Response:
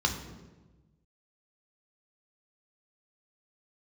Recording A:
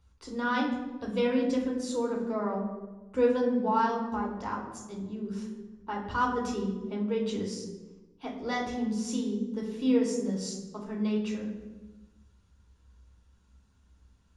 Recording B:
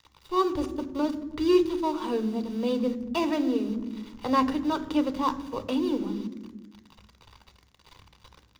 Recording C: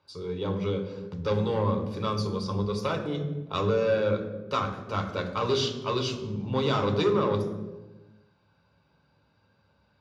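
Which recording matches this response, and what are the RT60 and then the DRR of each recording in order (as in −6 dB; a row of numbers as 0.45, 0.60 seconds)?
C; 1.2, 1.2, 1.2 seconds; −1.5, 10.5, 3.0 decibels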